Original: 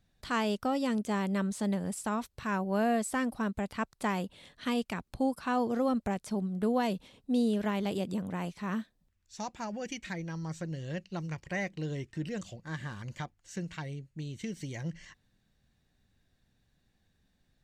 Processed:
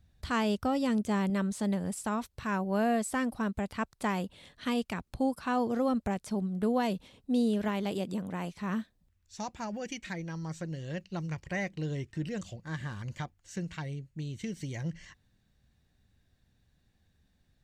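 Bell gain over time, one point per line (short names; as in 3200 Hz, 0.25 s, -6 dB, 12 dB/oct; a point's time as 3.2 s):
bell 71 Hz 1.5 oct
+14.5 dB
from 1.3 s +4 dB
from 7.68 s -4.5 dB
from 8.55 s +7.5 dB
from 9.77 s -1 dB
from 11.01 s +6 dB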